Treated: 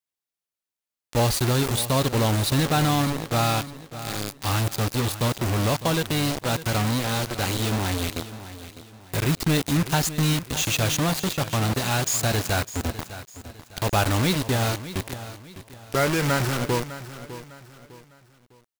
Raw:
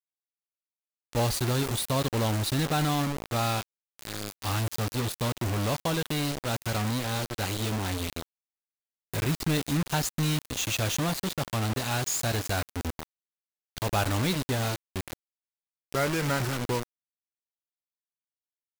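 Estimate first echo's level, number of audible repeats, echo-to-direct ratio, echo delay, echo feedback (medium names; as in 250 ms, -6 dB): -14.0 dB, 3, -13.5 dB, 604 ms, 36%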